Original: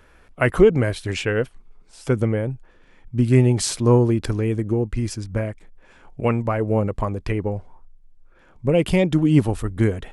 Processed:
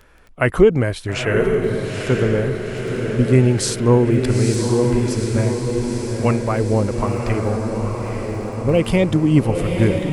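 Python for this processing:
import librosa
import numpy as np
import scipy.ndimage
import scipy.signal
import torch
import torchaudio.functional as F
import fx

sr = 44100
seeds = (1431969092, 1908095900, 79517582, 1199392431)

y = fx.dmg_crackle(x, sr, seeds[0], per_s=13.0, level_db=-34.0)
y = fx.echo_diffused(y, sr, ms=915, feedback_pct=63, wet_db=-4)
y = y * librosa.db_to_amplitude(1.5)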